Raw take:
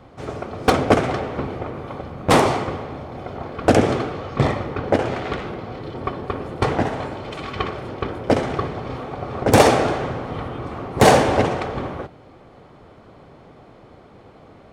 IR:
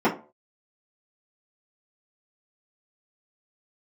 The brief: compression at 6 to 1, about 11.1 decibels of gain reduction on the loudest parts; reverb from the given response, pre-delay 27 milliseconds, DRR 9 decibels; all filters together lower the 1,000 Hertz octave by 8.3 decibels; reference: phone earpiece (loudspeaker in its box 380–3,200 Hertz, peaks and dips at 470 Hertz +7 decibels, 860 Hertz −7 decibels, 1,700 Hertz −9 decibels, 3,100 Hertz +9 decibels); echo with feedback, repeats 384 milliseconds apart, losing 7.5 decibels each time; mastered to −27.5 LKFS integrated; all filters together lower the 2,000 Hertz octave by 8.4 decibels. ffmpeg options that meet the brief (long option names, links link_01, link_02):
-filter_complex "[0:a]equalizer=frequency=1000:width_type=o:gain=-6,equalizer=frequency=2000:width_type=o:gain=-5.5,acompressor=threshold=-22dB:ratio=6,aecho=1:1:384|768|1152|1536|1920:0.422|0.177|0.0744|0.0312|0.0131,asplit=2[link_01][link_02];[1:a]atrim=start_sample=2205,adelay=27[link_03];[link_02][link_03]afir=irnorm=-1:irlink=0,volume=-26dB[link_04];[link_01][link_04]amix=inputs=2:normalize=0,highpass=380,equalizer=frequency=470:width_type=q:width=4:gain=7,equalizer=frequency=860:width_type=q:width=4:gain=-7,equalizer=frequency=1700:width_type=q:width=4:gain=-9,equalizer=frequency=3100:width_type=q:width=4:gain=9,lowpass=frequency=3200:width=0.5412,lowpass=frequency=3200:width=1.3066,volume=1.5dB"